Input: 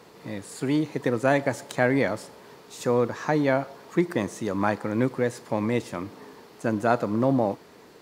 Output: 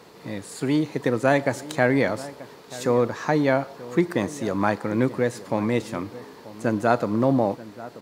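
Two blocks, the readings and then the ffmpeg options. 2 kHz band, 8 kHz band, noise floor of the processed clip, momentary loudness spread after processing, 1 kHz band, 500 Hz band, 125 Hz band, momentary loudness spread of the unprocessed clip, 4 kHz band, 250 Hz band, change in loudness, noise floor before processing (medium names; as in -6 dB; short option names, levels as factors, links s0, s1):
+2.0 dB, +2.0 dB, -46 dBFS, 15 LU, +2.0 dB, +2.0 dB, +2.0 dB, 13 LU, +3.0 dB, +2.0 dB, +2.0 dB, -51 dBFS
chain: -filter_complex "[0:a]equalizer=f=4100:t=o:w=0.33:g=2,asplit=2[s0][s1];[s1]adelay=932.9,volume=0.141,highshelf=f=4000:g=-21[s2];[s0][s2]amix=inputs=2:normalize=0,volume=1.26"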